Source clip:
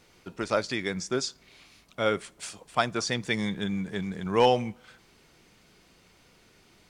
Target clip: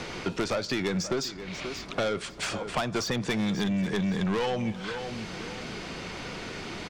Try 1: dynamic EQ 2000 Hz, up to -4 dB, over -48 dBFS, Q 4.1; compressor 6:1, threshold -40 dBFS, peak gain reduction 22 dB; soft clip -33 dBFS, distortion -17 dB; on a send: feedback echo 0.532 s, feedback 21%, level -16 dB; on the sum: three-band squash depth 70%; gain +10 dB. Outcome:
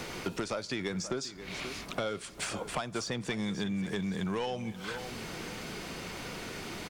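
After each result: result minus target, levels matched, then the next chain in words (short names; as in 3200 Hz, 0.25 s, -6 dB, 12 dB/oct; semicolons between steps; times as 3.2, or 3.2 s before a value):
compressor: peak gain reduction +9.5 dB; 8000 Hz band +3.0 dB
dynamic EQ 2000 Hz, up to -4 dB, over -48 dBFS, Q 4.1; compressor 6:1, threshold -28.5 dBFS, peak gain reduction 12.5 dB; soft clip -33 dBFS, distortion -9 dB; on a send: feedback echo 0.532 s, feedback 21%, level -16 dB; on the sum: three-band squash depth 70%; gain +10 dB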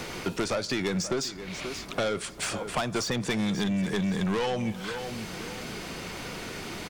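8000 Hz band +3.0 dB
dynamic EQ 2000 Hz, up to -4 dB, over -48 dBFS, Q 4.1; LPF 5900 Hz 12 dB/oct; compressor 6:1, threshold -28.5 dBFS, peak gain reduction 12.5 dB; soft clip -33 dBFS, distortion -9 dB; on a send: feedback echo 0.532 s, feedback 21%, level -16 dB; on the sum: three-band squash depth 70%; gain +10 dB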